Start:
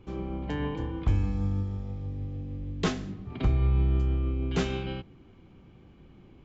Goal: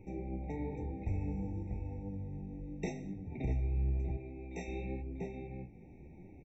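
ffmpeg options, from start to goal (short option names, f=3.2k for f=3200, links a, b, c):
-filter_complex "[0:a]asuperstop=centerf=4300:order=8:qfactor=3.3,bandreject=f=50:t=h:w=6,bandreject=f=100:t=h:w=6,asplit=2[a][b];[b]adelay=641.4,volume=-6dB,highshelf=f=4k:g=-14.4[c];[a][c]amix=inputs=2:normalize=0,asplit=2[d][e];[e]volume=21.5dB,asoftclip=hard,volume=-21.5dB,volume=-12dB[f];[d][f]amix=inputs=2:normalize=0,flanger=delay=9.6:depth=8.9:regen=38:speed=0.95:shape=triangular,acompressor=threshold=-51dB:ratio=1.5,asettb=1/sr,asplit=3[g][h][i];[g]atrim=end=4.174[j];[h]atrim=start=4.17:end=4.68,asetpts=PTS-STARTPTS,afade=t=in:d=0.004:c=qsin,afade=t=out:st=0.506:d=0.004:c=qsin,lowshelf=f=290:g=-10.5[k];[i]atrim=start=4.676[l];[j][k]acrossfade=d=0.004:c1=hsin:c2=qsin[m];[m][l]acrossfade=d=0.004:c1=qsin:c2=hsin,afftfilt=real='re*eq(mod(floor(b*sr/1024/910),2),0)':imag='im*eq(mod(floor(b*sr/1024/910),2),0)':win_size=1024:overlap=0.75,volume=2dB"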